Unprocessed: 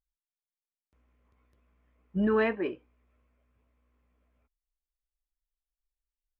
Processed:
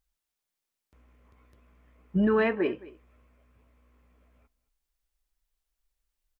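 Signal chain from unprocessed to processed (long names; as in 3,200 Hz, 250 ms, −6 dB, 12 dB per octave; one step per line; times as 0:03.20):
downward compressor 2 to 1, threshold −35 dBFS, peak gain reduction 8 dB
single-tap delay 220 ms −20 dB
level +9 dB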